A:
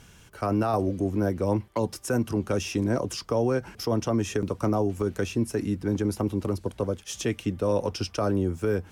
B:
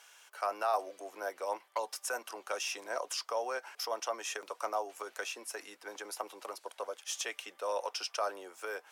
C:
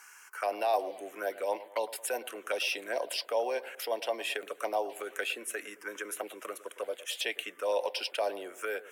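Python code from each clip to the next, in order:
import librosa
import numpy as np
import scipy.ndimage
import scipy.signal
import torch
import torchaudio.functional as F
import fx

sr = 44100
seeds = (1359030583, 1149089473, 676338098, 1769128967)

y1 = scipy.signal.sosfilt(scipy.signal.butter(4, 650.0, 'highpass', fs=sr, output='sos'), x)
y1 = F.gain(torch.from_numpy(y1), -2.0).numpy()
y2 = fx.env_phaser(y1, sr, low_hz=590.0, high_hz=1300.0, full_db=-33.0)
y2 = fx.echo_bbd(y2, sr, ms=109, stages=1024, feedback_pct=44, wet_db=-16.0)
y2 = F.gain(torch.from_numpy(y2), 8.0).numpy()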